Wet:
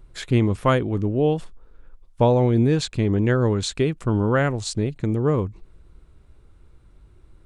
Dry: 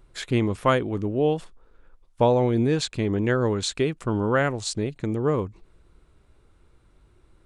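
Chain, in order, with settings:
low-shelf EQ 200 Hz +8 dB

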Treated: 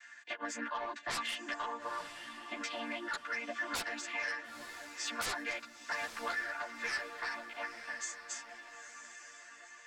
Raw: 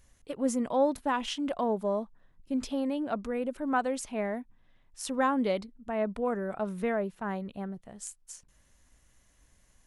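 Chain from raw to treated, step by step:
channel vocoder with a chord as carrier major triad, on A#3
high-pass with resonance 1,700 Hz, resonance Q 5.4
sine wavefolder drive 19 dB, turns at −18.5 dBFS
downward compressor 6 to 1, threshold −35 dBFS, peak gain reduction 13 dB
on a send: feedback delay with all-pass diffusion 937 ms, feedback 44%, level −10 dB
on the sum: string-ensemble chorus
level +1 dB

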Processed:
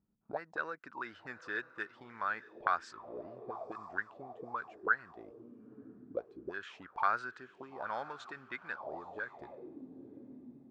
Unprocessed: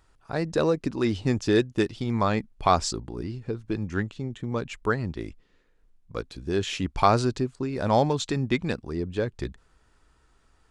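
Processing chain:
feedback delay with all-pass diffusion 932 ms, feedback 45%, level −16 dB
envelope filter 200–1,500 Hz, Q 6.8, up, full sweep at −23 dBFS
level +3 dB

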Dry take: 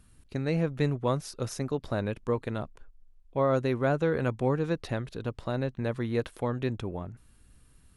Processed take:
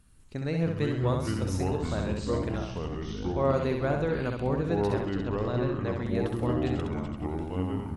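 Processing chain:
repeating echo 66 ms, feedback 39%, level −4.5 dB
delay with pitch and tempo change per echo 199 ms, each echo −5 semitones, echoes 3
0:05.05–0:06.05: Butterworth low-pass 7,300 Hz 36 dB per octave
level −3 dB

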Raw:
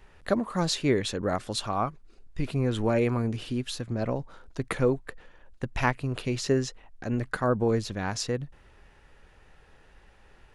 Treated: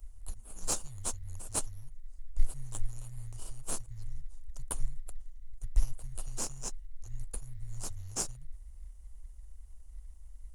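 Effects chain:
inverse Chebyshev band-stop filter 290–1,700 Hz, stop band 80 dB
parametric band 2,900 Hz +13 dB 0.23 octaves
in parallel at −6.5 dB: sample-rate reduction 2,000 Hz, jitter 20%
on the sum: level +8 dB

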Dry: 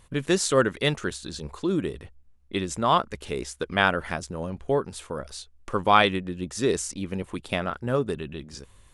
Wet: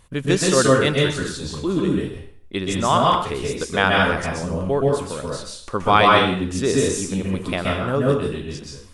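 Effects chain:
dense smooth reverb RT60 0.55 s, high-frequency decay 0.95×, pre-delay 115 ms, DRR −2 dB
level +2 dB

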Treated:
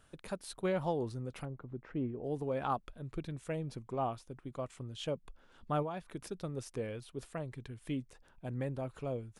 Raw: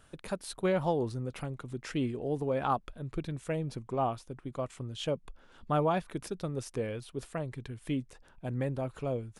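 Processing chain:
0:01.45–0:02.24: low-pass filter 1,200 Hz 12 dB per octave
0:05.82–0:06.23: downward compressor 6 to 1, threshold −32 dBFS, peak gain reduction 8 dB
level −4.5 dB

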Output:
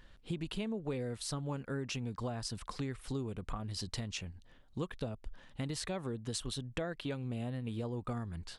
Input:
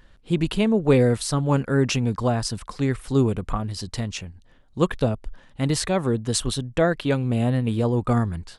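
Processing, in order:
parametric band 3,500 Hz +3 dB 1.5 octaves
downward compressor 6 to 1, threshold −30 dBFS, peak gain reduction 16.5 dB
level −5.5 dB

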